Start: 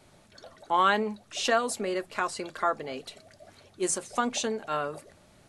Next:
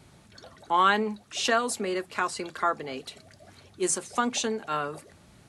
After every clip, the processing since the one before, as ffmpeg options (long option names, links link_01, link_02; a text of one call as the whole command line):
ffmpeg -i in.wav -filter_complex "[0:a]highpass=43,equalizer=frequency=600:width=3.2:gain=-5.5,acrossover=split=200[link_01][link_02];[link_01]acompressor=mode=upward:threshold=-53dB:ratio=2.5[link_03];[link_03][link_02]amix=inputs=2:normalize=0,volume=2dB" out.wav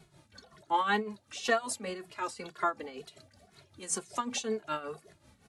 ffmpeg -i in.wav -filter_complex "[0:a]tremolo=f=5.3:d=0.71,asplit=2[link_01][link_02];[link_02]adelay=2.3,afreqshift=-2[link_03];[link_01][link_03]amix=inputs=2:normalize=1" out.wav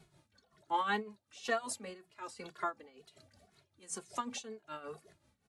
ffmpeg -i in.wav -af "tremolo=f=1.2:d=0.74,volume=-4dB" out.wav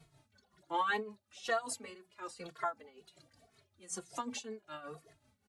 ffmpeg -i in.wav -filter_complex "[0:a]asplit=2[link_01][link_02];[link_02]adelay=3.9,afreqshift=-1.2[link_03];[link_01][link_03]amix=inputs=2:normalize=1,volume=3dB" out.wav